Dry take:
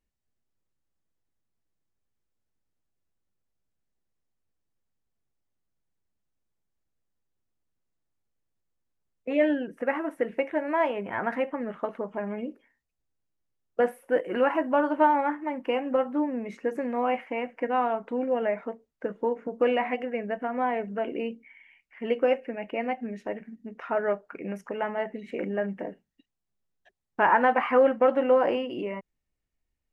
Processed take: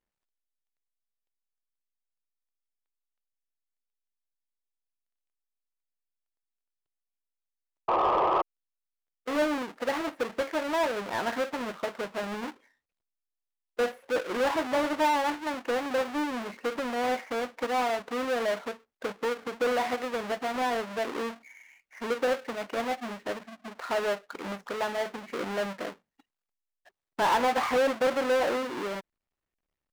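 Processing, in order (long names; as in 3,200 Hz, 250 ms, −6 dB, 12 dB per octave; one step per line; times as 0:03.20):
each half-wave held at its own peak
sound drawn into the spectrogram noise, 0:07.88–0:08.42, 320–1,300 Hz −19 dBFS
mid-hump overdrive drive 16 dB, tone 2,200 Hz, clips at −7.5 dBFS
level −9 dB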